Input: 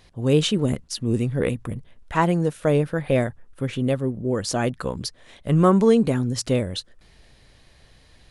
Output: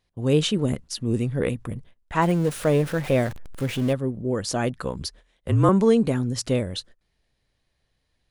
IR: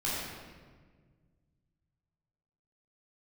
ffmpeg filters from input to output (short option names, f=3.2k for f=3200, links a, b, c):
-filter_complex "[0:a]asettb=1/sr,asplit=3[a][b][c];[a]atrim=end=2.224[d];[b]atrim=start=2.22:end=3.93,asetpts=PTS-STARTPTS,afade=t=in:d=0.004:c=qsin,afade=t=out:st=1.706:d=0.004:c=qsin,aeval=exprs='val(0)+0.5*0.0299*sgn(val(0))':c=same[e];[c]atrim=start=3.926[f];[d][e]acrossfade=d=0.004:c1=hsin:c2=qsin[g];[g][f]acrossfade=d=0.004:c1=qsin:c2=hsin,agate=range=-18dB:threshold=-42dB:ratio=16:detection=peak,asettb=1/sr,asplit=3[h][i][j];[h]atrim=end=4.984[k];[i]atrim=start=4.98:end=5.69,asetpts=PTS-STARTPTS,afade=t=in:d=0.004:c=qsin,afade=t=out:st=0.706:d=0.004:c=qsin,afreqshift=-44[l];[j]atrim=start=5.686[m];[k][l]acrossfade=d=0.004:c1=hsin:c2=qsin[n];[n][m]acrossfade=d=0.004:c1=qsin:c2=hsin,volume=-1.5dB"